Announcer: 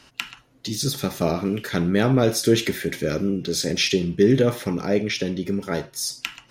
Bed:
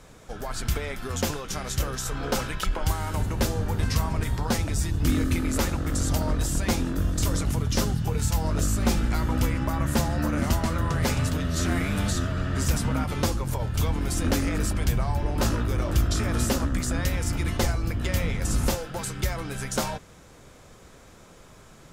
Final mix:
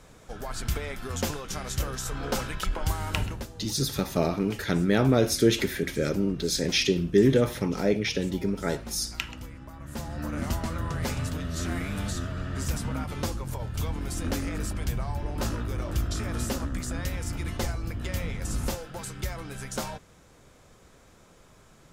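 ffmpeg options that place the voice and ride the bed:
ffmpeg -i stem1.wav -i stem2.wav -filter_complex "[0:a]adelay=2950,volume=-3dB[link_01];[1:a]volume=9.5dB,afade=type=out:start_time=3.22:duration=0.24:silence=0.177828,afade=type=in:start_time=9.81:duration=0.6:silence=0.251189[link_02];[link_01][link_02]amix=inputs=2:normalize=0" out.wav

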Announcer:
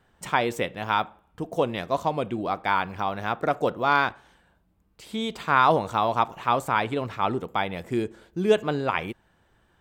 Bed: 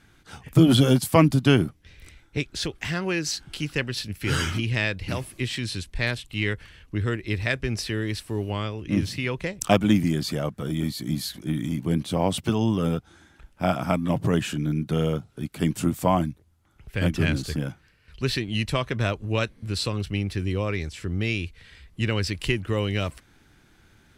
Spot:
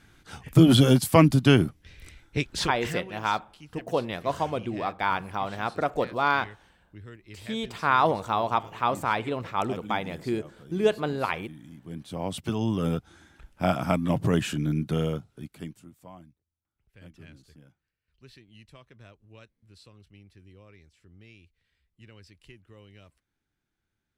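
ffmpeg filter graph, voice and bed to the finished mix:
ffmpeg -i stem1.wav -i stem2.wav -filter_complex "[0:a]adelay=2350,volume=-2.5dB[link_01];[1:a]volume=18dB,afade=type=out:start_time=2.65:duration=0.46:silence=0.112202,afade=type=in:start_time=11.82:duration=1.26:silence=0.125893,afade=type=out:start_time=14.8:duration=1.01:silence=0.0562341[link_02];[link_01][link_02]amix=inputs=2:normalize=0" out.wav

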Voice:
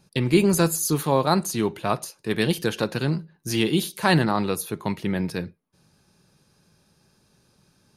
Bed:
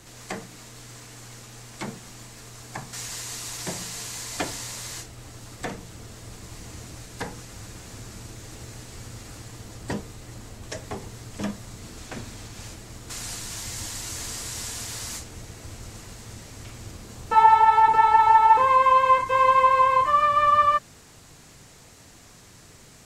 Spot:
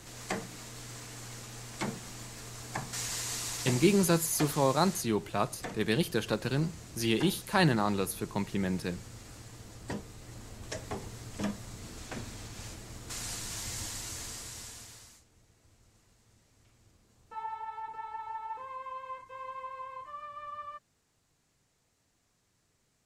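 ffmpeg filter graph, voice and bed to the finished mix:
ffmpeg -i stem1.wav -i stem2.wav -filter_complex "[0:a]adelay=3500,volume=-6dB[link_01];[1:a]volume=2.5dB,afade=type=out:start_time=3.38:duration=0.78:silence=0.473151,afade=type=in:start_time=10.05:duration=0.7:silence=0.668344,afade=type=out:start_time=13.74:duration=1.42:silence=0.1[link_02];[link_01][link_02]amix=inputs=2:normalize=0" out.wav

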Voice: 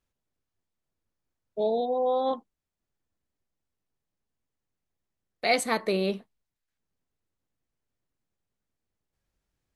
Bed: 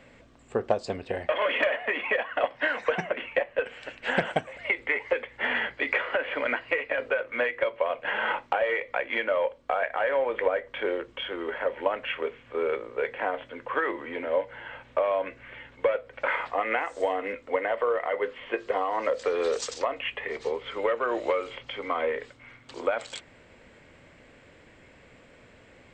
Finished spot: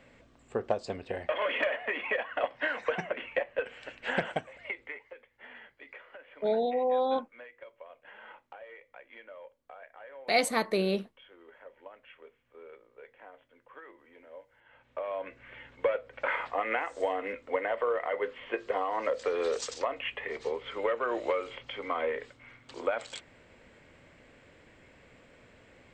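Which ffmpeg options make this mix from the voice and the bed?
ffmpeg -i stem1.wav -i stem2.wav -filter_complex "[0:a]adelay=4850,volume=-1.5dB[link_01];[1:a]volume=14.5dB,afade=type=out:start_time=4.19:duration=0.91:silence=0.125893,afade=type=in:start_time=14.64:duration=1.07:silence=0.112202[link_02];[link_01][link_02]amix=inputs=2:normalize=0" out.wav

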